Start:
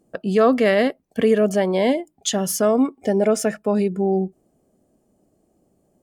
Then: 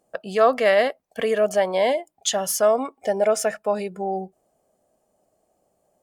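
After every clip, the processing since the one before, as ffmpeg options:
-af "lowshelf=f=440:t=q:w=1.5:g=-10.5"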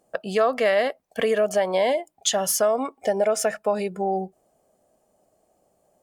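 -af "acompressor=threshold=-21dB:ratio=3,volume=2.5dB"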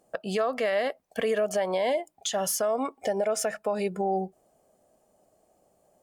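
-af "alimiter=limit=-18.5dB:level=0:latency=1:release=183"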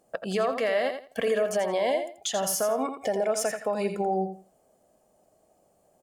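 -af "aecho=1:1:84|168|252:0.398|0.0836|0.0176"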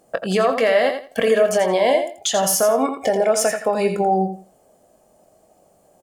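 -filter_complex "[0:a]asplit=2[a][b];[b]adelay=22,volume=-10dB[c];[a][c]amix=inputs=2:normalize=0,volume=8.5dB"

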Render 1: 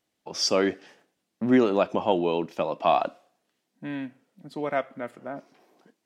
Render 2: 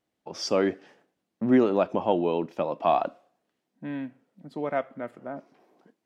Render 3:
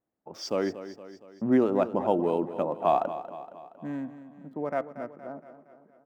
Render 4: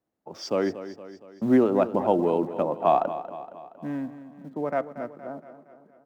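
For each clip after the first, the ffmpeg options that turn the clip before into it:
-af "highshelf=f=2.2k:g=-9"
-filter_complex "[0:a]acrossover=split=1800[a][b];[a]dynaudnorm=f=270:g=11:m=4dB[c];[b]aeval=exprs='sgn(val(0))*max(abs(val(0))-0.00355,0)':c=same[d];[c][d]amix=inputs=2:normalize=0,aecho=1:1:233|466|699|932|1165|1398:0.224|0.121|0.0653|0.0353|0.019|0.0103,volume=-4.5dB"
-filter_complex "[0:a]highshelf=f=5.5k:g=-6,acrossover=split=150[a][b];[a]acrusher=bits=4:mode=log:mix=0:aa=0.000001[c];[c][b]amix=inputs=2:normalize=0,volume=3dB"

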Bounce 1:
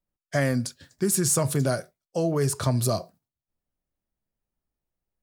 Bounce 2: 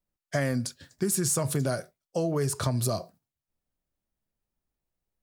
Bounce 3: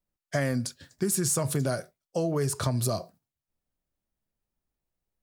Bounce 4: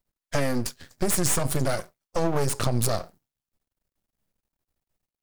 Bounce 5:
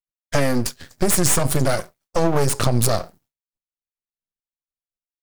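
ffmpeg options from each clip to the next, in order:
-af "acompressor=threshold=-24dB:ratio=3"
-af anull
-af "aeval=exprs='max(val(0),0)':c=same,volume=7.5dB"
-af "agate=range=-33dB:threshold=-59dB:ratio=3:detection=peak,volume=6dB"

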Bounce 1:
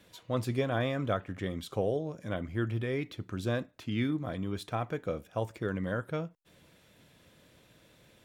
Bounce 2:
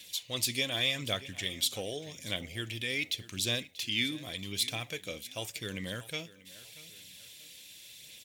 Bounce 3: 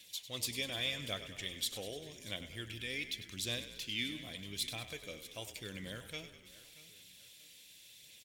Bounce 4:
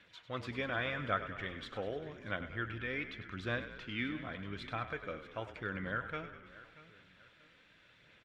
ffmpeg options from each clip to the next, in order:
-af "aecho=1:1:637|1274|1911:0.126|0.0428|0.0146,aexciter=amount=14.6:drive=3.9:freq=2.1k,aphaser=in_gain=1:out_gain=1:delay=3.9:decay=0.28:speed=0.86:type=sinusoidal,volume=-8.5dB"
-filter_complex "[0:a]asplit=8[a][b][c][d][e][f][g][h];[b]adelay=99,afreqshift=-33,volume=-12dB[i];[c]adelay=198,afreqshift=-66,volume=-16.2dB[j];[d]adelay=297,afreqshift=-99,volume=-20.3dB[k];[e]adelay=396,afreqshift=-132,volume=-24.5dB[l];[f]adelay=495,afreqshift=-165,volume=-28.6dB[m];[g]adelay=594,afreqshift=-198,volume=-32.8dB[n];[h]adelay=693,afreqshift=-231,volume=-36.9dB[o];[a][i][j][k][l][m][n][o]amix=inputs=8:normalize=0,volume=-7dB"
-af "lowpass=f=1.4k:t=q:w=4.9,volume=4.5dB"

